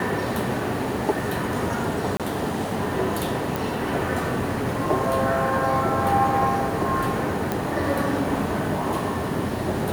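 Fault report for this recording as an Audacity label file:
2.170000	2.200000	dropout 27 ms
3.560000	3.560000	pop
7.520000	7.520000	pop

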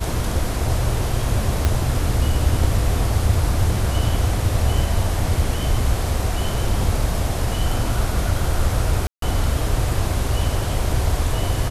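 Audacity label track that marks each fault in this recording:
1.650000	1.650000	pop -5 dBFS
9.070000	9.220000	dropout 153 ms

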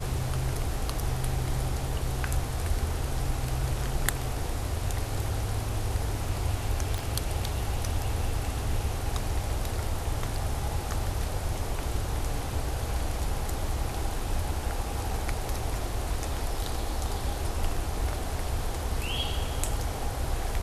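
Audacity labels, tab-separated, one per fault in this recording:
6.980000	6.980000	pop

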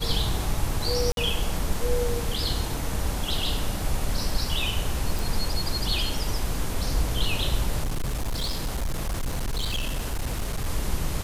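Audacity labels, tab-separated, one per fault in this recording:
1.120000	1.170000	dropout 52 ms
5.190000	5.190000	pop
7.830000	10.660000	clipped -23.5 dBFS

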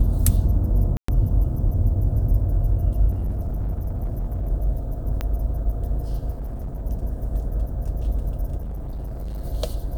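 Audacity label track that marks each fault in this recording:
0.970000	1.080000	dropout 114 ms
3.100000	4.490000	clipped -21.5 dBFS
5.210000	5.210000	pop -13 dBFS
6.300000	6.820000	clipped -26 dBFS
8.570000	9.420000	clipped -27 dBFS

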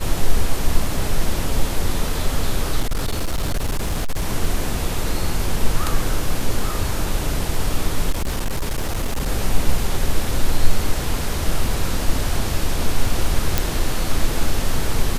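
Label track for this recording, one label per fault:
2.800000	4.260000	clipped -16.5 dBFS
8.100000	9.280000	clipped -17.5 dBFS
13.580000	13.580000	pop

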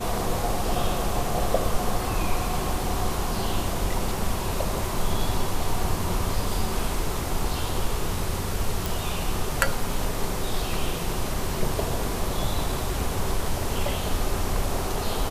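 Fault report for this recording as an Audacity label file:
8.860000	8.860000	pop

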